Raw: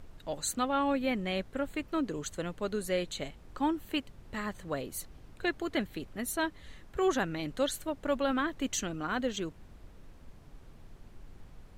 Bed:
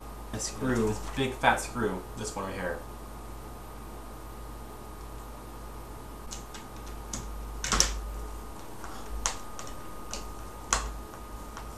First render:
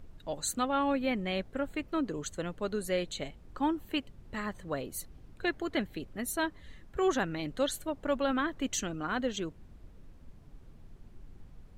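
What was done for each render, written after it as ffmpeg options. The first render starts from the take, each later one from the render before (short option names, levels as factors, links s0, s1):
-af "afftdn=nr=6:nf=-54"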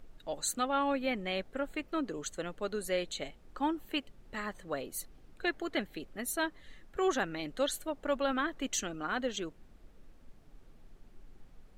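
-af "equalizer=f=87:w=0.53:g=-11,bandreject=f=1000:w=16"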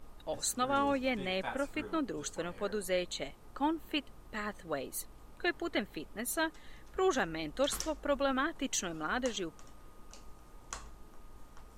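-filter_complex "[1:a]volume=0.15[s0];[0:a][s0]amix=inputs=2:normalize=0"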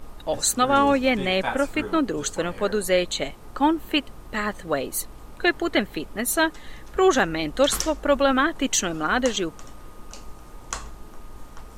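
-af "volume=3.98"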